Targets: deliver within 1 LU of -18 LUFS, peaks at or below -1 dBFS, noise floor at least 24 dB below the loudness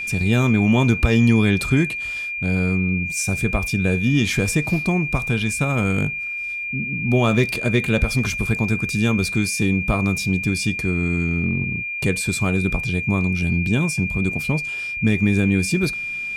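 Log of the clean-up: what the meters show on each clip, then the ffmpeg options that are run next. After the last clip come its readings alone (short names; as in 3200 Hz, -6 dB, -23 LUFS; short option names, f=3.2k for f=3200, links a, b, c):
steady tone 2400 Hz; tone level -25 dBFS; loudness -20.0 LUFS; peak -4.0 dBFS; loudness target -18.0 LUFS
-> -af "bandreject=f=2.4k:w=30"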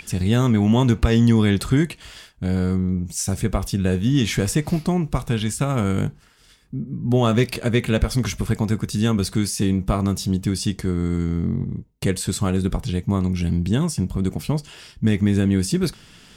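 steady tone none; loudness -21.5 LUFS; peak -5.0 dBFS; loudness target -18.0 LUFS
-> -af "volume=3.5dB"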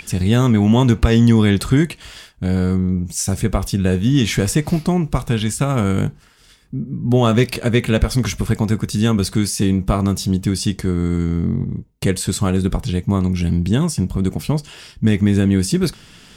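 loudness -18.0 LUFS; peak -1.5 dBFS; noise floor -48 dBFS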